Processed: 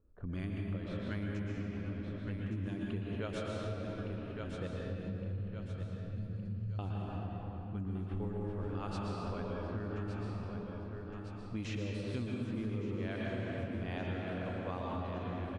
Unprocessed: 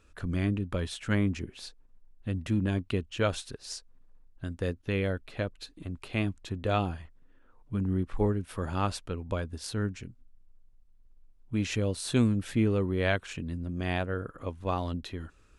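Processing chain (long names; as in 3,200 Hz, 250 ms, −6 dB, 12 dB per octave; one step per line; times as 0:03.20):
0:04.67–0:06.79: linear-phase brick-wall band-stop 210–4,100 Hz
low-pass that shuts in the quiet parts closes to 520 Hz, open at −23.5 dBFS
repeating echo 1,164 ms, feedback 44%, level −11 dB
convolution reverb RT60 3.3 s, pre-delay 112 ms, DRR −3 dB
downward compressor 5 to 1, threshold −28 dBFS, peak gain reduction 11.5 dB
level −7 dB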